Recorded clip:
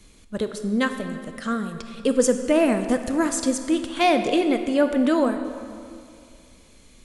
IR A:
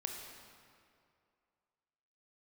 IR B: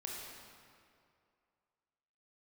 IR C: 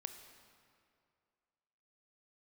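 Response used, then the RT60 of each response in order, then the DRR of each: C; 2.4 s, 2.4 s, 2.4 s; 2.0 dB, -3.0 dB, 7.5 dB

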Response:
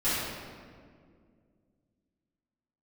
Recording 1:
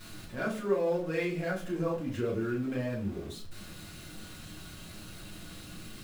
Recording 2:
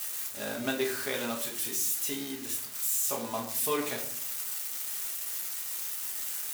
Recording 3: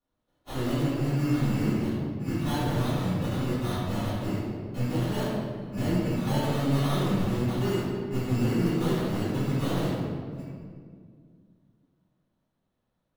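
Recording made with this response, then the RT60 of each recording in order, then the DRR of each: 3; 0.45 s, 0.60 s, 2.1 s; -5.5 dB, -1.5 dB, -16.0 dB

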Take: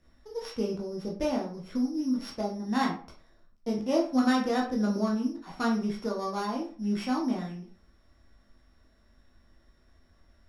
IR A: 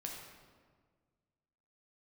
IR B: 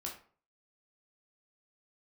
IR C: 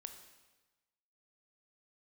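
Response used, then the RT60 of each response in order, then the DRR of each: B; 1.6 s, 0.45 s, 1.2 s; -1.0 dB, -2.0 dB, 6.5 dB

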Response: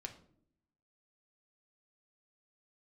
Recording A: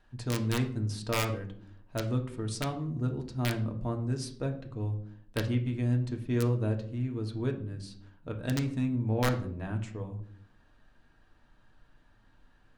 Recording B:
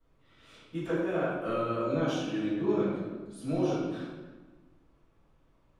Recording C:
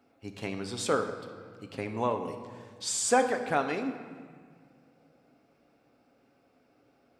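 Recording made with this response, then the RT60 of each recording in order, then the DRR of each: A; 0.65 s, 1.3 s, 1.9 s; 3.0 dB, -14.0 dB, 5.5 dB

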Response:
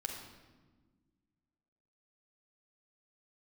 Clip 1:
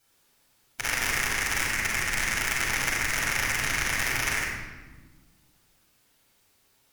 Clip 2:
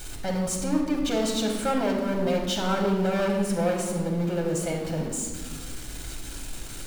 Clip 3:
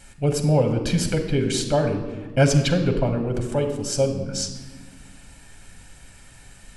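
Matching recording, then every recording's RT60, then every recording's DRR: 2; 1.4 s, 1.4 s, 1.4 s; -7.5 dB, -0.5 dB, 4.5 dB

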